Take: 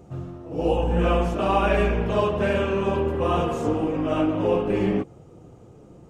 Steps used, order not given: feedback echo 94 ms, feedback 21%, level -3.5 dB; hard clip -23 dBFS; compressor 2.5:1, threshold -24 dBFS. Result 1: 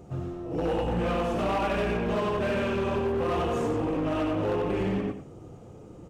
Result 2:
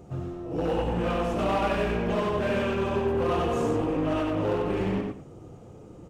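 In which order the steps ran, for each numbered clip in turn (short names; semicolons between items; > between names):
feedback echo > compressor > hard clip; compressor > hard clip > feedback echo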